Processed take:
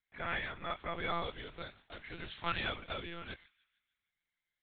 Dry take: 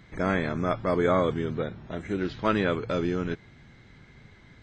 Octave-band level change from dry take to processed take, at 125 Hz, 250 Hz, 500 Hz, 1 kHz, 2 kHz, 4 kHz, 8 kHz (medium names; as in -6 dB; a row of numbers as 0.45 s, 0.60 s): -16.5 dB, -20.5 dB, -17.5 dB, -9.0 dB, -5.5 dB, -1.0 dB, no reading